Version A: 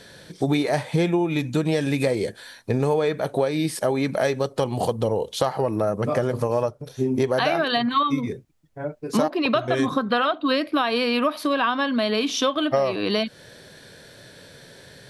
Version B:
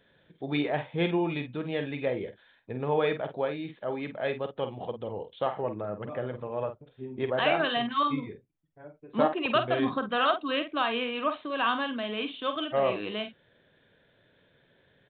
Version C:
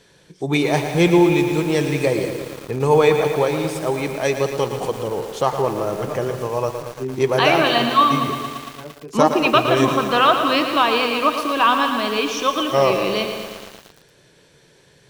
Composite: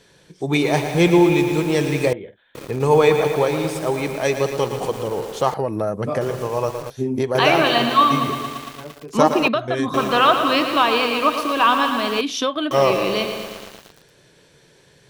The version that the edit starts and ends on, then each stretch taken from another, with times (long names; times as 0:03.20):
C
0:02.13–0:02.55: punch in from B
0:05.54–0:06.21: punch in from A
0:06.90–0:07.35: punch in from A
0:09.48–0:09.94: punch in from A
0:12.21–0:12.71: punch in from A